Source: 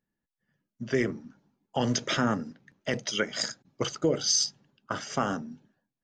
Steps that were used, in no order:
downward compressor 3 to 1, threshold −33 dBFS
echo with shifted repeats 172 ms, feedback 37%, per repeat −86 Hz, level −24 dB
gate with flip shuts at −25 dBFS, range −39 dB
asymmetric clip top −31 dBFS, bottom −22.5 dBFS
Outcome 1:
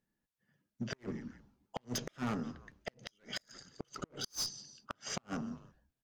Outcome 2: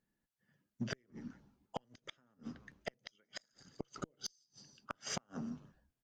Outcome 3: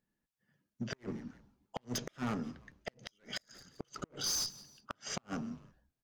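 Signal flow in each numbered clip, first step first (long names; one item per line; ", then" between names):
echo with shifted repeats, then asymmetric clip, then downward compressor, then gate with flip
downward compressor, then echo with shifted repeats, then gate with flip, then asymmetric clip
asymmetric clip, then echo with shifted repeats, then downward compressor, then gate with flip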